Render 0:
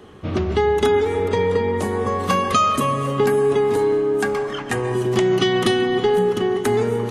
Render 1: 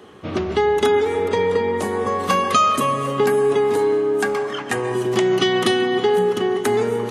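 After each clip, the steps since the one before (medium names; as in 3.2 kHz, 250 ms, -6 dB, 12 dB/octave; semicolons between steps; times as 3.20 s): high-pass 240 Hz 6 dB/octave; trim +1.5 dB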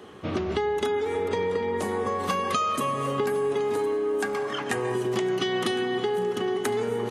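compression 4:1, threshold -23 dBFS, peak gain reduction 9 dB; feedback delay 1060 ms, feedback 40%, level -17 dB; trim -1.5 dB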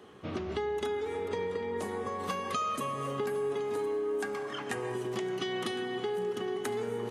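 reverberation RT60 2.8 s, pre-delay 3 ms, DRR 14 dB; trim -7.5 dB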